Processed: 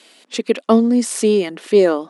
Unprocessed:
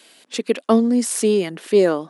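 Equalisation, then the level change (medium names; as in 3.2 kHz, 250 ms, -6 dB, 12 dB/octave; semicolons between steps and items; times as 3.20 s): brick-wall FIR high-pass 170 Hz; Bessel low-pass 8.4 kHz; band-stop 1.6 kHz, Q 17; +2.5 dB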